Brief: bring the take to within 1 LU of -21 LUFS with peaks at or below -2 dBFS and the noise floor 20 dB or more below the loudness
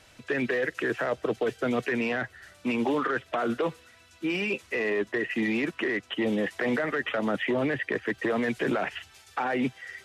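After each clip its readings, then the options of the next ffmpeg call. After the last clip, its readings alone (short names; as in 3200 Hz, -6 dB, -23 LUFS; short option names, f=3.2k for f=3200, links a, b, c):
loudness -29.0 LUFS; peak -15.0 dBFS; loudness target -21.0 LUFS
-> -af "volume=8dB"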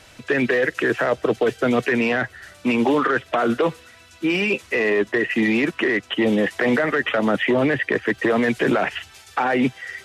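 loudness -21.0 LUFS; peak -7.0 dBFS; noise floor -49 dBFS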